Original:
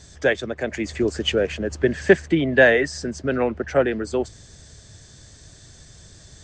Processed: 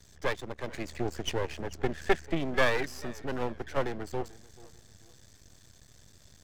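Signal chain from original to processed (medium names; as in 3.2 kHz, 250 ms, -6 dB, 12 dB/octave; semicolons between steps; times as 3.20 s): half-wave rectifier; modulated delay 439 ms, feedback 34%, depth 146 cents, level -21.5 dB; trim -7 dB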